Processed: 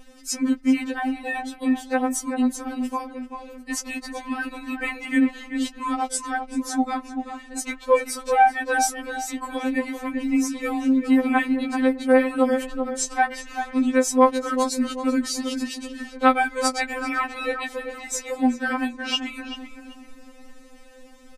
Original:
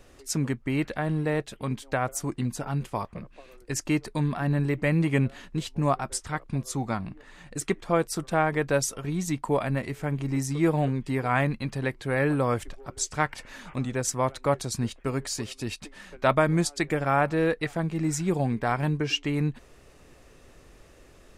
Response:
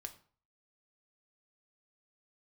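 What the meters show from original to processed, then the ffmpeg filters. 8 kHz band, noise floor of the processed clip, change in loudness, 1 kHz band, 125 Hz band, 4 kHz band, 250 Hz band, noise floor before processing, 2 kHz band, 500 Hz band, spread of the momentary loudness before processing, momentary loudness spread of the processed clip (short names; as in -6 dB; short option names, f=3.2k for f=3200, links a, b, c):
+3.5 dB, -46 dBFS, +4.0 dB, +6.5 dB, under -25 dB, +4.5 dB, +6.0 dB, -54 dBFS, +5.0 dB, +3.0 dB, 9 LU, 12 LU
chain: -filter_complex "[0:a]asplit=2[a][b];[b]adelay=387,lowpass=f=1.8k:p=1,volume=-7dB,asplit=2[c][d];[d]adelay=387,lowpass=f=1.8k:p=1,volume=0.38,asplit=2[e][f];[f]adelay=387,lowpass=f=1.8k:p=1,volume=0.38,asplit=2[g][h];[h]adelay=387,lowpass=f=1.8k:p=1,volume=0.38[i];[a][c][e][g][i]amix=inputs=5:normalize=0,afftfilt=real='re*3.46*eq(mod(b,12),0)':imag='im*3.46*eq(mod(b,12),0)':win_size=2048:overlap=0.75,volume=6dB"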